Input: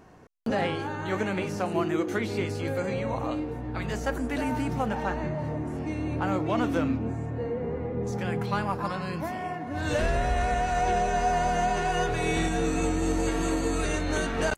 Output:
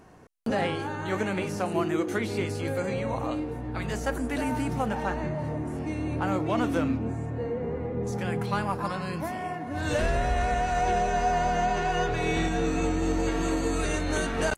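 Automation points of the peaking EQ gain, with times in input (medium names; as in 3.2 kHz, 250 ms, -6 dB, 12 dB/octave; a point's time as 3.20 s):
peaking EQ 9.8 kHz 0.61 oct
9.68 s +6 dB
10.36 s -2 dB
10.92 s -2 dB
11.66 s -11.5 dB
13.29 s -11.5 dB
13.48 s -5.5 dB
14.07 s +4 dB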